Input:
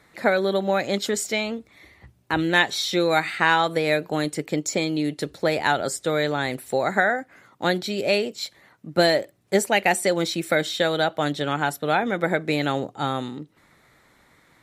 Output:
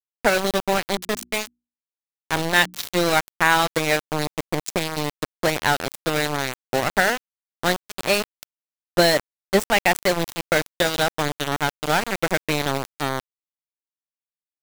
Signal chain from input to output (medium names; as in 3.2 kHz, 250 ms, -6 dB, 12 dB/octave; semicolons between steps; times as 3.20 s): small samples zeroed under -19.5 dBFS; 0.84–2.83 s: hum notches 60/120/180/240/300/360 Hz; trim +2 dB